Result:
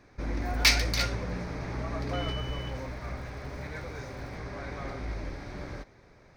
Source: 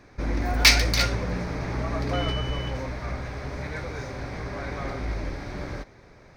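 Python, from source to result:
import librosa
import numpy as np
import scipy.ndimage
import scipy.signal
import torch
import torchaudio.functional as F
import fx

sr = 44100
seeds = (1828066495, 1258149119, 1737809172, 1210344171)

y = fx.dmg_crackle(x, sr, seeds[0], per_s=430.0, level_db=-46.0, at=(2.1, 4.37), fade=0.02)
y = y * librosa.db_to_amplitude(-5.5)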